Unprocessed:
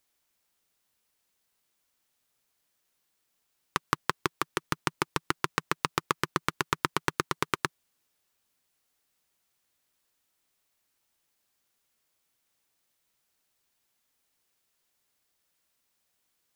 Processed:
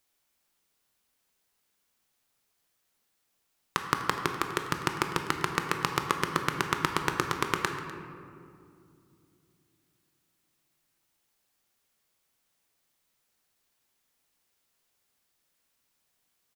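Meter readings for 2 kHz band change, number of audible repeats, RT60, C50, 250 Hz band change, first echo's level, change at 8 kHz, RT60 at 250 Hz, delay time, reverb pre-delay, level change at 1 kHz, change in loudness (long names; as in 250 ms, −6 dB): +1.5 dB, 1, 2.4 s, 5.5 dB, +2.0 dB, −18.0 dB, +0.5 dB, 3.7 s, 249 ms, 17 ms, +1.5 dB, +1.0 dB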